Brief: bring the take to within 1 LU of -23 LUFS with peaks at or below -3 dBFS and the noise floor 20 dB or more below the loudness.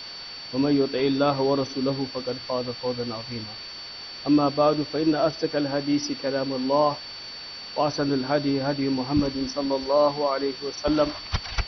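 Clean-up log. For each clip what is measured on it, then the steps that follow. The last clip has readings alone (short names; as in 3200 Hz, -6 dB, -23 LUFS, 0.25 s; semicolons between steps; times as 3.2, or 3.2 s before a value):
steady tone 4500 Hz; tone level -37 dBFS; noise floor -39 dBFS; noise floor target -45 dBFS; loudness -25.0 LUFS; peak -9.0 dBFS; loudness target -23.0 LUFS
-> notch 4500 Hz, Q 30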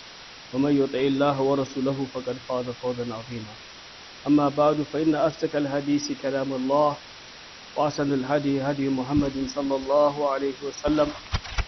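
steady tone none; noise floor -44 dBFS; noise floor target -45 dBFS
-> denoiser 6 dB, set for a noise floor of -44 dBFS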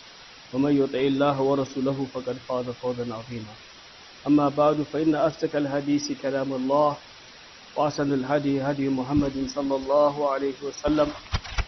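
noise floor -47 dBFS; loudness -25.0 LUFS; peak -9.5 dBFS; loudness target -23.0 LUFS
-> gain +2 dB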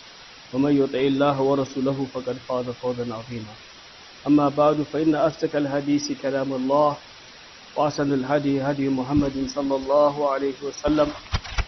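loudness -23.0 LUFS; peak -7.5 dBFS; noise floor -45 dBFS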